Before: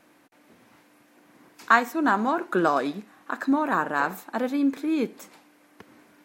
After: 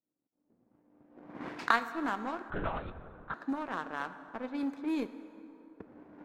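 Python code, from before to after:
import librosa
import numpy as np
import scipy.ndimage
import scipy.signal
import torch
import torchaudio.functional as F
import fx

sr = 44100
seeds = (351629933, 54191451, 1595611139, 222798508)

y = fx.recorder_agc(x, sr, target_db=-13.5, rise_db_per_s=20.0, max_gain_db=30)
y = fx.env_lowpass(y, sr, base_hz=360.0, full_db=-16.5)
y = fx.power_curve(y, sr, exponent=1.4)
y = fx.rev_plate(y, sr, seeds[0], rt60_s=3.4, hf_ratio=0.5, predelay_ms=0, drr_db=11.0)
y = fx.lpc_vocoder(y, sr, seeds[1], excitation='whisper', order=10, at=(2.5, 3.34))
y = y * 10.0 ** (-7.0 / 20.0)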